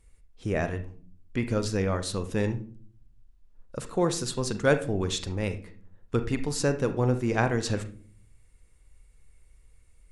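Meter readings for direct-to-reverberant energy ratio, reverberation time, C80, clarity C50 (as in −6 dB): 8.5 dB, 0.45 s, 18.0 dB, 12.5 dB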